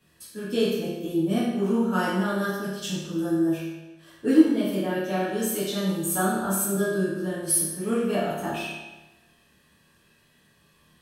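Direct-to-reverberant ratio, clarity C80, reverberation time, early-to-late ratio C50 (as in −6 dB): −10.5 dB, 2.5 dB, 1.1 s, 0.0 dB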